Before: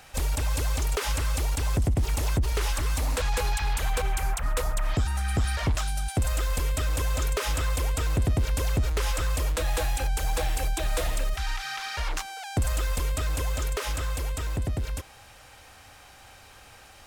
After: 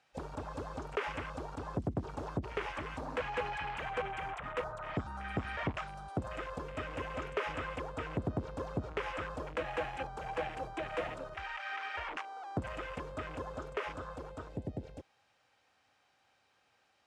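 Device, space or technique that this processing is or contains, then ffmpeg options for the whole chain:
over-cleaned archive recording: -af "highpass=160,lowpass=5400,afwtdn=0.0158,volume=-4dB"

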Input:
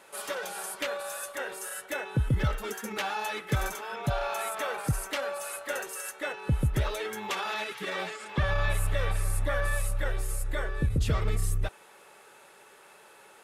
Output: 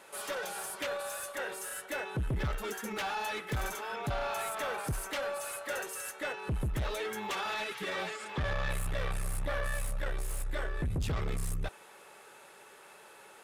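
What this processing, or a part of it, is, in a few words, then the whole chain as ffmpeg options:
saturation between pre-emphasis and de-emphasis: -af "highshelf=frequency=6600:gain=10.5,asoftclip=type=tanh:threshold=-28.5dB,highshelf=frequency=6600:gain=-10.5"

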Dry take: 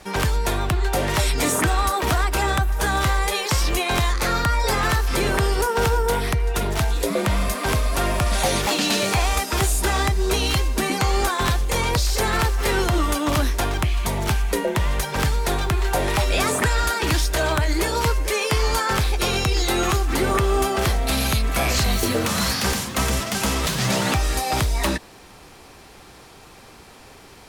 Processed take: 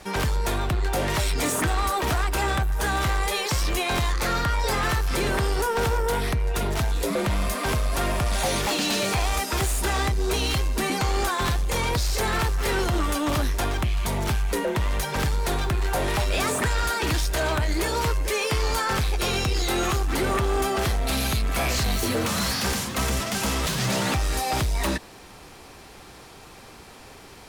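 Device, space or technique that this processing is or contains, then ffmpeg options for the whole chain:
saturation between pre-emphasis and de-emphasis: -af "highshelf=frequency=6000:gain=7,asoftclip=type=tanh:threshold=-18.5dB,highshelf=frequency=6000:gain=-7"

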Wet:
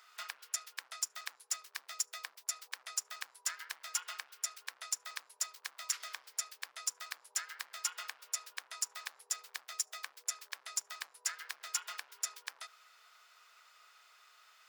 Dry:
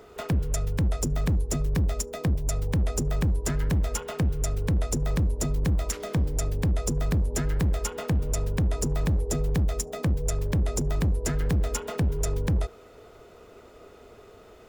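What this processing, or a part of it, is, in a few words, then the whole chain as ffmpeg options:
headphones lying on a table: -af "highpass=frequency=1200:width=0.5412,highpass=frequency=1200:width=1.3066,equalizer=frequency=4900:width_type=o:width=0.54:gain=5,volume=-3.5dB"

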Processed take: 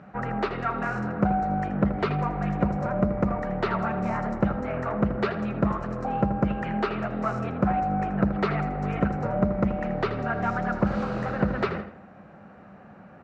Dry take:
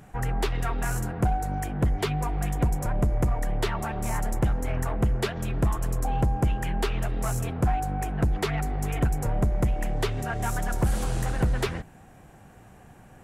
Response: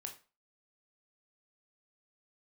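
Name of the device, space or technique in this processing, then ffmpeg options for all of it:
guitar cabinet: -filter_complex "[0:a]highpass=100,equalizer=frequency=120:width_type=q:width=4:gain=-7,equalizer=frequency=200:width_type=q:width=4:gain=10,equalizer=frequency=580:width_type=q:width=4:gain=8,equalizer=frequency=1300:width_type=q:width=4:gain=9,equalizer=frequency=3300:width_type=q:width=4:gain=-9,lowpass=frequency=4000:width=0.5412,lowpass=frequency=4000:width=1.3066,asettb=1/sr,asplit=3[link_01][link_02][link_03];[link_01]atrim=end=9.194[link_04];[link_02]atrim=start=9.19:end=10.99,asetpts=PTS-STARTPTS,afade=type=in:duration=0.004:curve=qsin,afade=type=out:start_time=1.796:duration=0.004:curve=qsin,lowpass=frequency=7700:width=0.5412,lowpass=frequency=7700:width=1.3066[link_05];[link_03]atrim=start=10.986[link_06];[link_04][link_05]acrossfade=duration=0.004:curve1=hsin:curve2=qsin[link_07];[link_07][link_06]acrossfade=duration=0.004:curve1=qsin:curve2=hsin,asplit=2[link_08][link_09];[link_09]adelay=80,lowpass=frequency=4500:poles=1,volume=-9.5dB,asplit=2[link_10][link_11];[link_11]adelay=80,lowpass=frequency=4500:poles=1,volume=0.41,asplit=2[link_12][link_13];[link_13]adelay=80,lowpass=frequency=4500:poles=1,volume=0.41,asplit=2[link_14][link_15];[link_15]adelay=80,lowpass=frequency=4500:poles=1,volume=0.41[link_16];[link_08][link_10][link_12][link_14][link_16]amix=inputs=5:normalize=0"

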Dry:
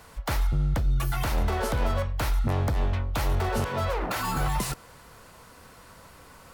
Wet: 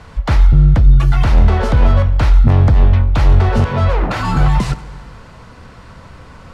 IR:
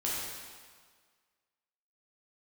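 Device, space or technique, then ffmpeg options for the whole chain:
saturated reverb return: -filter_complex "[0:a]lowpass=5600,bass=frequency=250:gain=8,treble=frequency=4000:gain=-3,asplit=2[link_01][link_02];[1:a]atrim=start_sample=2205[link_03];[link_02][link_03]afir=irnorm=-1:irlink=0,asoftclip=type=tanh:threshold=-16dB,volume=-17dB[link_04];[link_01][link_04]amix=inputs=2:normalize=0,volume=8dB"

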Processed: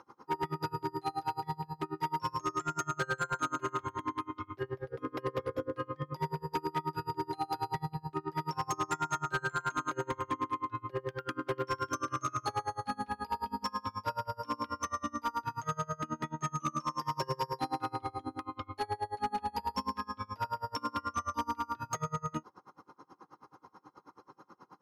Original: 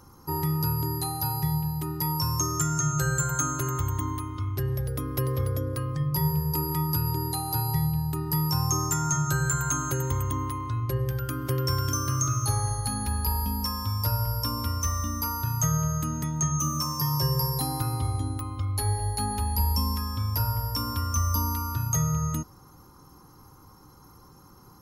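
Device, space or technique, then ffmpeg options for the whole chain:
helicopter radio: -af "highpass=340,lowpass=2600,aeval=exprs='val(0)*pow(10,-30*(0.5-0.5*cos(2*PI*9.3*n/s))/20)':channel_layout=same,asoftclip=type=hard:threshold=-32.5dB,volume=6.5dB"

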